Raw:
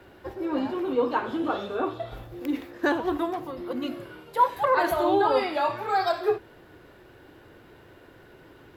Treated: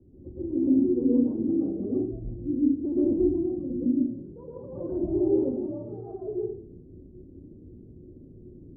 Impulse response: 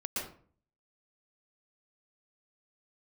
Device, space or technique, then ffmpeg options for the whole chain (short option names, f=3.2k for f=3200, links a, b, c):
next room: -filter_complex "[0:a]lowpass=f=300:w=0.5412,lowpass=f=300:w=1.3066[a];[1:a]atrim=start_sample=2205[b];[a][b]afir=irnorm=-1:irlink=0,volume=4dB"